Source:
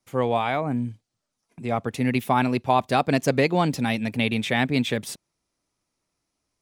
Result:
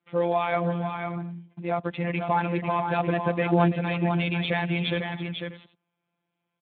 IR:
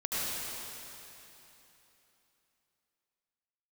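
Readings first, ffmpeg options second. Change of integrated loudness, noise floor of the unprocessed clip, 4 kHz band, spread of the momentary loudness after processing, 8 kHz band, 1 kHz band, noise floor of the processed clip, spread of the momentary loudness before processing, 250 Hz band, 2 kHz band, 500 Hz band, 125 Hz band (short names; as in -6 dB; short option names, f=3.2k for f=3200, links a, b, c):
-3.0 dB, -81 dBFS, -3.5 dB, 10 LU, under -40 dB, -2.5 dB, -82 dBFS, 8 LU, -3.0 dB, -2.5 dB, -1.5 dB, 0.0 dB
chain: -af "acontrast=72,alimiter=limit=-8dB:level=0:latency=1:release=22,afftfilt=real='hypot(re,im)*cos(PI*b)':imag='0':win_size=1024:overlap=0.75,aecho=1:1:329|498|586:0.178|0.501|0.126,volume=-3dB" -ar 8000 -c:a libspeex -b:a 11k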